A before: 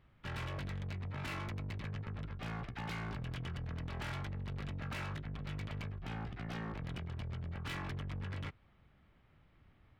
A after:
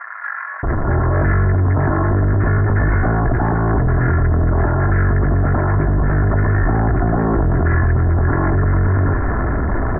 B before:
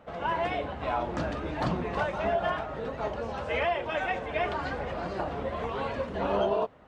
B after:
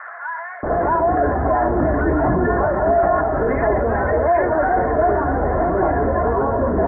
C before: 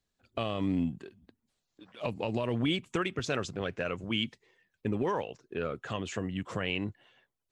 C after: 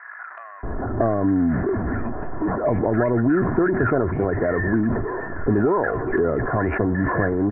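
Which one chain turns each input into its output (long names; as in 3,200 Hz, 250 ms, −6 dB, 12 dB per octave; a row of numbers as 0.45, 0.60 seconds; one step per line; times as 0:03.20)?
converter with a step at zero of −36.5 dBFS
Butterworth low-pass 1,800 Hz 72 dB per octave
comb filter 2.9 ms, depth 44%
dynamic equaliser 1,200 Hz, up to −4 dB, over −50 dBFS, Q 4.7
downward compressor 3 to 1, threshold −38 dBFS
multiband delay without the direct sound highs, lows 630 ms, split 1,300 Hz
level that may fall only so fast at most 34 dB per second
normalise the peak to −6 dBFS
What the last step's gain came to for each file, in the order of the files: +25.0, +20.5, +18.5 decibels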